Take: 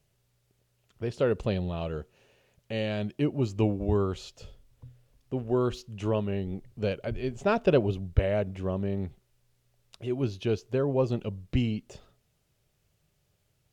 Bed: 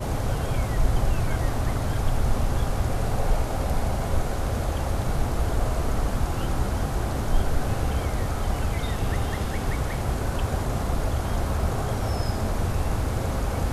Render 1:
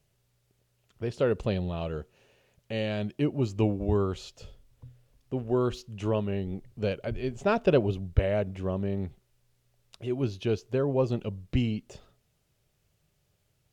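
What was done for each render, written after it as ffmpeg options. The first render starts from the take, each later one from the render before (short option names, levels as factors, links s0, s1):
-af anull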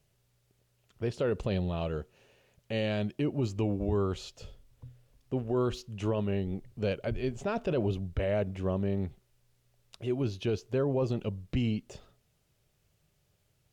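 -af "alimiter=limit=0.0841:level=0:latency=1:release=17"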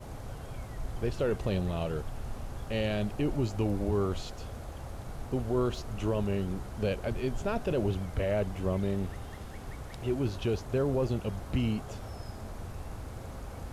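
-filter_complex "[1:a]volume=0.168[s0];[0:a][s0]amix=inputs=2:normalize=0"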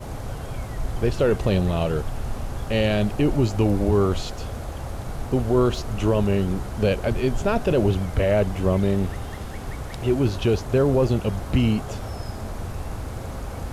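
-af "volume=2.99"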